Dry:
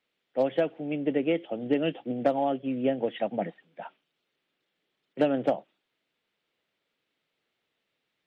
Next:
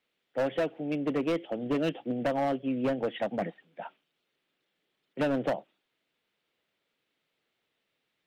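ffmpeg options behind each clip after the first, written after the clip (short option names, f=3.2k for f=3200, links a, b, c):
-af "asoftclip=type=hard:threshold=-23.5dB"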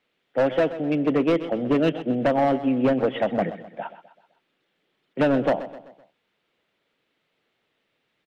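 -af "lowpass=f=3.3k:p=1,aecho=1:1:128|256|384|512:0.2|0.0918|0.0422|0.0194,volume=8dB"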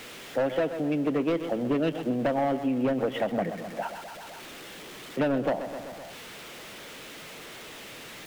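-af "aeval=exprs='val(0)+0.5*0.0133*sgn(val(0))':c=same,acompressor=threshold=-28dB:ratio=2"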